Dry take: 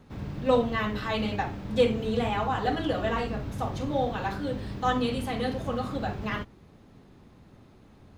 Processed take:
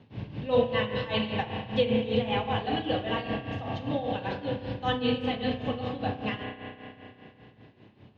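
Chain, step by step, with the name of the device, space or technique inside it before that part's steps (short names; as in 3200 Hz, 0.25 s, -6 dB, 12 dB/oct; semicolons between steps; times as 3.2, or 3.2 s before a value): combo amplifier with spring reverb and tremolo (spring tank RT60 3.1 s, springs 32 ms, chirp 55 ms, DRR 2.5 dB; tremolo 5.1 Hz, depth 71%; speaker cabinet 100–4600 Hz, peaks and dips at 110 Hz +9 dB, 1300 Hz -9 dB, 2900 Hz +8 dB)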